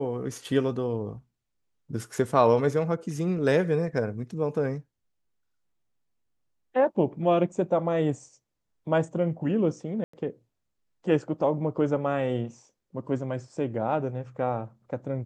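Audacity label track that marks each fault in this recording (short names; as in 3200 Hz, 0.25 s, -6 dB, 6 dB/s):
10.040000	10.130000	gap 94 ms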